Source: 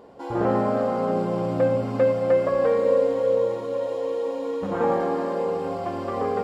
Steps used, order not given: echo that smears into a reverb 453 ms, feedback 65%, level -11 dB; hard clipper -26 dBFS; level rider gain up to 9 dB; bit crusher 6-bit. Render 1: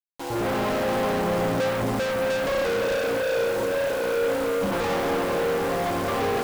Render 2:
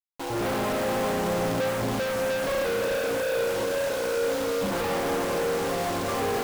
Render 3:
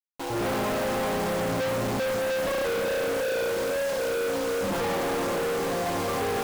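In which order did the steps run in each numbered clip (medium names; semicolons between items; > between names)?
level rider > hard clipper > bit crusher > echo that smears into a reverb; bit crusher > level rider > hard clipper > echo that smears into a reverb; echo that smears into a reverb > bit crusher > level rider > hard clipper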